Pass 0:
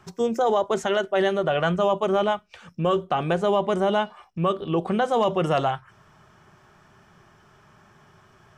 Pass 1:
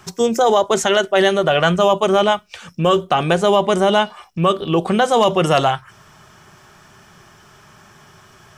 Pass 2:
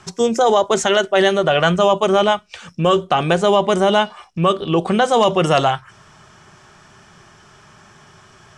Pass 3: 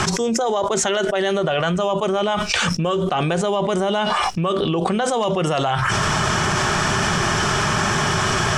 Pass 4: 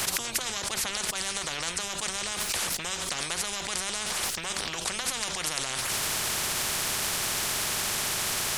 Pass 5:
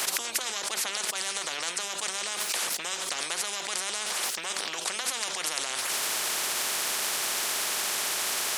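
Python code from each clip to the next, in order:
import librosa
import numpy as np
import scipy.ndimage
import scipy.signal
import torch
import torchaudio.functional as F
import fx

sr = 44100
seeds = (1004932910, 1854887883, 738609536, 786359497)

y1 = fx.high_shelf(x, sr, hz=3100.0, db=11.0)
y1 = y1 * librosa.db_to_amplitude(6.5)
y2 = scipy.signal.sosfilt(scipy.signal.butter(4, 9500.0, 'lowpass', fs=sr, output='sos'), y1)
y3 = fx.env_flatten(y2, sr, amount_pct=100)
y3 = y3 * librosa.db_to_amplitude(-7.5)
y4 = fx.peak_eq(y3, sr, hz=350.0, db=-11.5, octaves=2.0)
y4 = fx.spectral_comp(y4, sr, ratio=10.0)
y4 = y4 * librosa.db_to_amplitude(-8.0)
y5 = scipy.signal.sosfilt(scipy.signal.butter(2, 330.0, 'highpass', fs=sr, output='sos'), y4)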